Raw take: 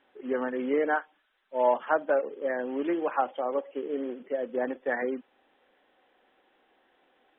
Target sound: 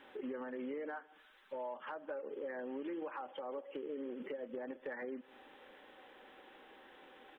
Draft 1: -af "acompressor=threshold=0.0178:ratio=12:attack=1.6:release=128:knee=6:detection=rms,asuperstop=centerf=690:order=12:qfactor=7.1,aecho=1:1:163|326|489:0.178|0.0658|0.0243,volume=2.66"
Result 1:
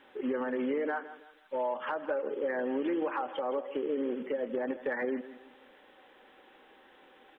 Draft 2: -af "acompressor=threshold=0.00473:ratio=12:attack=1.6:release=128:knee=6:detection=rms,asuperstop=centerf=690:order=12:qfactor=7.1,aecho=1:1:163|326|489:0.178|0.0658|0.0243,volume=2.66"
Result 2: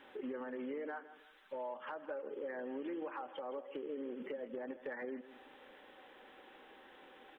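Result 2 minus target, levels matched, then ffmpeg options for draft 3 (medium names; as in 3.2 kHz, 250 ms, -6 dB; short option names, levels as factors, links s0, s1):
echo-to-direct +9 dB
-af "acompressor=threshold=0.00473:ratio=12:attack=1.6:release=128:knee=6:detection=rms,asuperstop=centerf=690:order=12:qfactor=7.1,aecho=1:1:163|326:0.0631|0.0233,volume=2.66"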